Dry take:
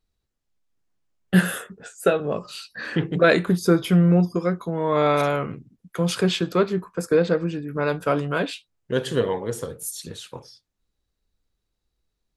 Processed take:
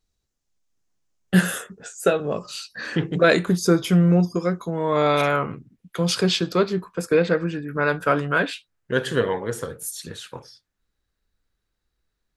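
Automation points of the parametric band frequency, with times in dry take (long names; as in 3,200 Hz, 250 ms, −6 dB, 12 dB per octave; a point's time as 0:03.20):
parametric band +8 dB 0.81 octaves
0:05.05 6,400 Hz
0:05.45 830 Hz
0:06.07 5,000 Hz
0:06.70 5,000 Hz
0:07.43 1,600 Hz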